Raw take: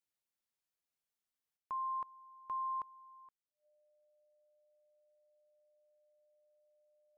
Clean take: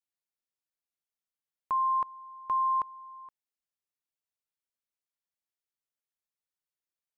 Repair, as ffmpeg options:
-af "bandreject=f=600:w=30,asetnsamples=n=441:p=0,asendcmd='1.57 volume volume 11dB',volume=1"

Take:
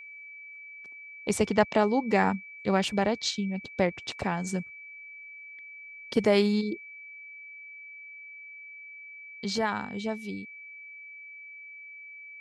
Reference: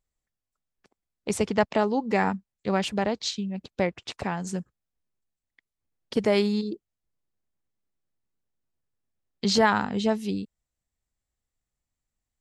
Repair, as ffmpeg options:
-af "bandreject=f=2300:w=30,asetnsamples=n=441:p=0,asendcmd='6.84 volume volume 8dB',volume=1"

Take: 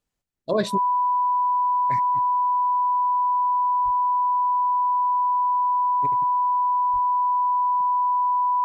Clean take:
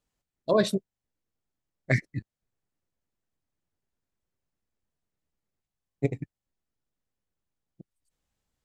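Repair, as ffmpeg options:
-filter_complex "[0:a]bandreject=f=990:w=30,asplit=3[s0][s1][s2];[s0]afade=t=out:st=3.84:d=0.02[s3];[s1]highpass=f=140:w=0.5412,highpass=f=140:w=1.3066,afade=t=in:st=3.84:d=0.02,afade=t=out:st=3.96:d=0.02[s4];[s2]afade=t=in:st=3.96:d=0.02[s5];[s3][s4][s5]amix=inputs=3:normalize=0,asplit=3[s6][s7][s8];[s6]afade=t=out:st=6.92:d=0.02[s9];[s7]highpass=f=140:w=0.5412,highpass=f=140:w=1.3066,afade=t=in:st=6.92:d=0.02,afade=t=out:st=7.04:d=0.02[s10];[s8]afade=t=in:st=7.04:d=0.02[s11];[s9][s10][s11]amix=inputs=3:normalize=0,asetnsamples=n=441:p=0,asendcmd='0.9 volume volume 11.5dB',volume=1"

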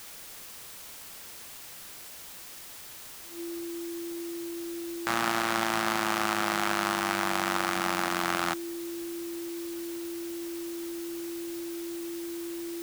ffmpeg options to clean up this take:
-af "bandreject=f=340:w=30,afwtdn=0.0056"

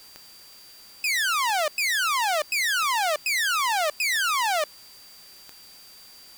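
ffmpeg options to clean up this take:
-af "adeclick=t=4,bandreject=f=4700:w=30,afwtdn=0.0028"

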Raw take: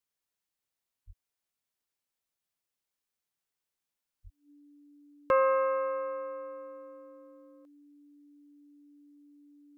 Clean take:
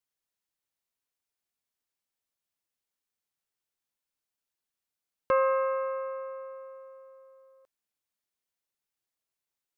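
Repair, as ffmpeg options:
-filter_complex "[0:a]bandreject=f=290:w=30,asplit=3[s0][s1][s2];[s0]afade=t=out:st=1.06:d=0.02[s3];[s1]highpass=f=140:w=0.5412,highpass=f=140:w=1.3066,afade=t=in:st=1.06:d=0.02,afade=t=out:st=1.18:d=0.02[s4];[s2]afade=t=in:st=1.18:d=0.02[s5];[s3][s4][s5]amix=inputs=3:normalize=0,asplit=3[s6][s7][s8];[s6]afade=t=out:st=4.23:d=0.02[s9];[s7]highpass=f=140:w=0.5412,highpass=f=140:w=1.3066,afade=t=in:st=4.23:d=0.02,afade=t=out:st=4.35:d=0.02[s10];[s8]afade=t=in:st=4.35:d=0.02[s11];[s9][s10][s11]amix=inputs=3:normalize=0"

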